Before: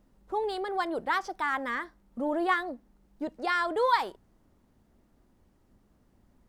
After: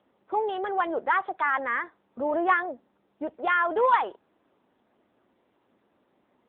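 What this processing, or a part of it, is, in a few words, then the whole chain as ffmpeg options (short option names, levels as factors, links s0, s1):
telephone: -af "highpass=390,lowpass=3300,asoftclip=type=tanh:threshold=0.133,volume=2" -ar 8000 -c:a libopencore_amrnb -b:a 7950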